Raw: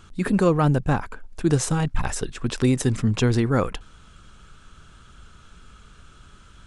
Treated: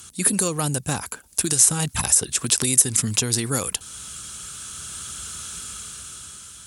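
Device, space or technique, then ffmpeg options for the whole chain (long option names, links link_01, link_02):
FM broadcast chain: -filter_complex "[0:a]highpass=frequency=61:width=0.5412,highpass=frequency=61:width=1.3066,dynaudnorm=framelen=400:gausssize=7:maxgain=13dB,acrossover=split=1300|2600[link_01][link_02][link_03];[link_01]acompressor=threshold=-20dB:ratio=4[link_04];[link_02]acompressor=threshold=-40dB:ratio=4[link_05];[link_03]acompressor=threshold=-33dB:ratio=4[link_06];[link_04][link_05][link_06]amix=inputs=3:normalize=0,aemphasis=mode=production:type=75fm,alimiter=limit=-13dB:level=0:latency=1:release=241,asoftclip=type=hard:threshold=-14.5dB,lowpass=frequency=15000:width=0.5412,lowpass=frequency=15000:width=1.3066,aemphasis=mode=production:type=75fm,volume=-1dB"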